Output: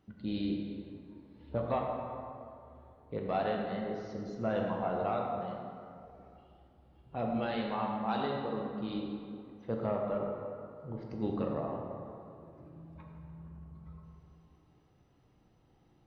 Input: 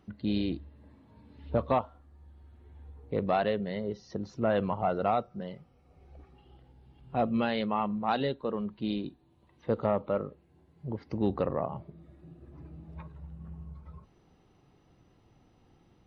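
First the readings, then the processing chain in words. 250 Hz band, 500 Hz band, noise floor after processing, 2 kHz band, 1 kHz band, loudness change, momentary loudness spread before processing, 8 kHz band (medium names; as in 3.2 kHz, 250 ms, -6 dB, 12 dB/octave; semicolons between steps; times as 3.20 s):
-3.5 dB, -3.5 dB, -66 dBFS, -4.5 dB, -4.0 dB, -4.5 dB, 18 LU, no reading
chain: plate-style reverb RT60 2.5 s, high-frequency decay 0.55×, DRR -0.5 dB; trim -7.5 dB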